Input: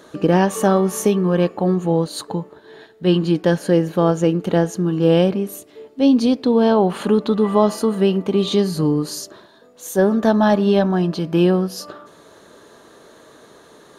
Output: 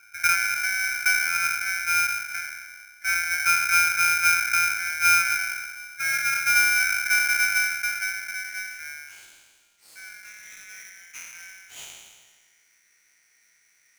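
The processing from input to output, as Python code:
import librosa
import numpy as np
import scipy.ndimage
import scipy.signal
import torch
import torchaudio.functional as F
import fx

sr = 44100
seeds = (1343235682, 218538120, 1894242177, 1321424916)

y = fx.spec_trails(x, sr, decay_s=1.52)
y = fx.brickwall_bandstop(y, sr, low_hz=530.0, high_hz=3700.0)
y = fx.filter_sweep_bandpass(y, sr, from_hz=500.0, to_hz=3300.0, start_s=7.57, end_s=10.63, q=2.9)
y = y * np.sign(np.sin(2.0 * np.pi * 1900.0 * np.arange(len(y)) / sr))
y = y * 10.0 ** (-1.5 / 20.0)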